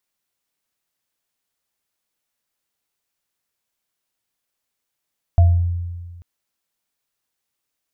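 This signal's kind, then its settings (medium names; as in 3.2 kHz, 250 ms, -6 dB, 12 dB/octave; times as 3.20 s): sine partials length 0.84 s, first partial 86.8 Hz, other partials 685 Hz, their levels -14 dB, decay 1.62 s, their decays 0.39 s, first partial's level -7 dB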